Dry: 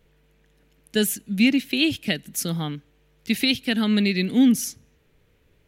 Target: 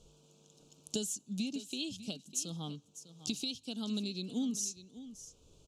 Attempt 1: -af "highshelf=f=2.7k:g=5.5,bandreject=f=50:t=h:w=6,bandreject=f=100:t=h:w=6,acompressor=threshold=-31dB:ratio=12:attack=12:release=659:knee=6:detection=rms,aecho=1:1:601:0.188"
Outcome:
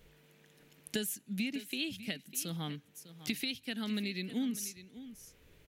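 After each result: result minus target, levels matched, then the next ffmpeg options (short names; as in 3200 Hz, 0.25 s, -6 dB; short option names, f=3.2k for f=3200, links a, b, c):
2000 Hz band +10.5 dB; 8000 Hz band -4.5 dB
-af "highshelf=f=2.7k:g=5.5,bandreject=f=50:t=h:w=6,bandreject=f=100:t=h:w=6,acompressor=threshold=-31dB:ratio=12:attack=12:release=659:knee=6:detection=rms,asuperstop=centerf=1900:order=4:qfactor=0.95,aecho=1:1:601:0.188"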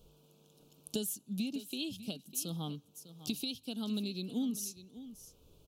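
8000 Hz band -3.5 dB
-af "lowpass=f=7.1k:t=q:w=2.9,highshelf=f=2.7k:g=5.5,bandreject=f=50:t=h:w=6,bandreject=f=100:t=h:w=6,acompressor=threshold=-31dB:ratio=12:attack=12:release=659:knee=6:detection=rms,asuperstop=centerf=1900:order=4:qfactor=0.95,aecho=1:1:601:0.188"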